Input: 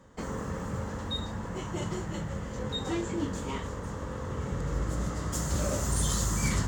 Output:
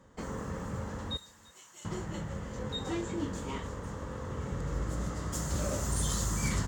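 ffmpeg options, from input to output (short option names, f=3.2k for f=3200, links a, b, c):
-filter_complex "[0:a]asettb=1/sr,asplit=3[a][b][c];[a]atrim=end=1.174[d];[b]atrim=start=1.17:end=1.85,asetpts=PTS-STARTPTS,afade=t=in:d=0.004:c=qsin,afade=t=out:st=0.676:d=0.004:c=qsin,aderivative[e];[c]atrim=start=1.846[f];[d][e]acrossfade=d=0.004:c1=hsin:c2=qsin[g];[g][f]acrossfade=d=0.004:c1=qsin:c2=hsin,aecho=1:1:340:0.0668,volume=-3dB"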